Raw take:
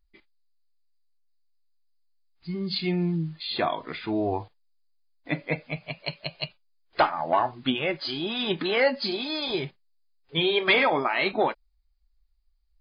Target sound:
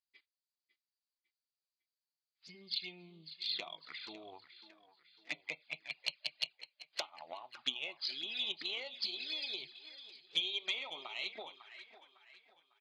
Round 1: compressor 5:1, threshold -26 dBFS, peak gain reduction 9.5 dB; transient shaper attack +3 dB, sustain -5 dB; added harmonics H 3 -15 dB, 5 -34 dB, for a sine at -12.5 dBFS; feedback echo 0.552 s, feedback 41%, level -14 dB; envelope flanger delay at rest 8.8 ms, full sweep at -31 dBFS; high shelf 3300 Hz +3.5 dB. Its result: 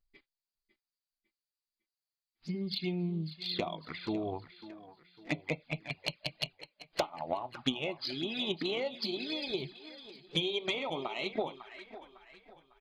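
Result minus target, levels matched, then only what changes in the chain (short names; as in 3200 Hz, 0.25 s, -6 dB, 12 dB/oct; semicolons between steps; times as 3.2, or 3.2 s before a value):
4000 Hz band -3.5 dB
add after envelope flanger: band-pass 4200 Hz, Q 0.71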